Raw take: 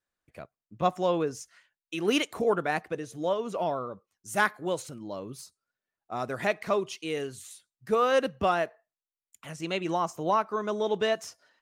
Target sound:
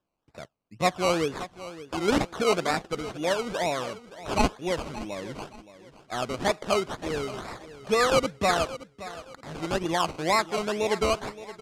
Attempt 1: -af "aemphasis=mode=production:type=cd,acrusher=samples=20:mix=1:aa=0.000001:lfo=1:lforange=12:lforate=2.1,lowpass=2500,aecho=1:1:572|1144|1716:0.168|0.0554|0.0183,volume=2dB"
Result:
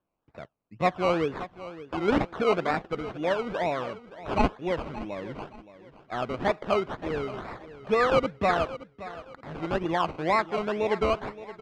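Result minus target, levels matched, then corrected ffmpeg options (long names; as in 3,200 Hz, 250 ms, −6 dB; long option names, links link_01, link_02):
8,000 Hz band −16.0 dB
-af "aemphasis=mode=production:type=cd,acrusher=samples=20:mix=1:aa=0.000001:lfo=1:lforange=12:lforate=2.1,lowpass=7700,aecho=1:1:572|1144|1716:0.168|0.0554|0.0183,volume=2dB"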